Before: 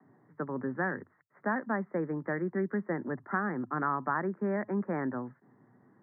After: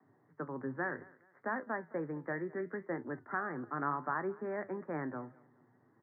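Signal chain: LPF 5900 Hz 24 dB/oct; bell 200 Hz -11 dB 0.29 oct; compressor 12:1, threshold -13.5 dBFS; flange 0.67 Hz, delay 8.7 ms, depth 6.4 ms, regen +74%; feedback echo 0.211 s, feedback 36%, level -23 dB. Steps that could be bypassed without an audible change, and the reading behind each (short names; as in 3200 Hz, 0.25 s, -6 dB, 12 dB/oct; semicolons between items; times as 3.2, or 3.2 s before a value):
LPF 5900 Hz: input band ends at 2000 Hz; compressor, threshold -13.5 dBFS: input peak -17.0 dBFS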